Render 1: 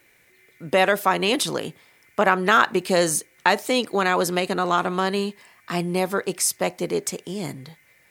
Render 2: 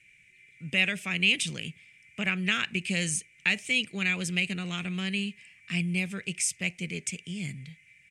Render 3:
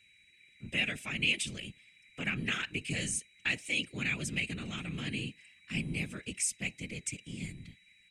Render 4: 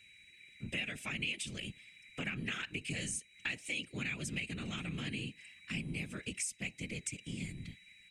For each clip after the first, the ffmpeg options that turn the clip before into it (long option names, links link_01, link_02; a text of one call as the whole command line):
ffmpeg -i in.wav -af "firequalizer=gain_entry='entry(180,0);entry(290,-15);entry(950,-27);entry(2400,8);entry(4100,-10);entry(5900,-5);entry(8400,-2);entry(14000,-29)':delay=0.05:min_phase=1,volume=-1.5dB" out.wav
ffmpeg -i in.wav -af "afftfilt=real='hypot(re,im)*cos(2*PI*random(0))':imag='hypot(re,im)*sin(2*PI*random(1))':win_size=512:overlap=0.75,aeval=exprs='val(0)+0.000501*sin(2*PI*3900*n/s)':channel_layout=same,equalizer=frequency=9600:width_type=o:width=0.77:gain=3" out.wav
ffmpeg -i in.wav -af "acompressor=threshold=-42dB:ratio=3,volume=3.5dB" out.wav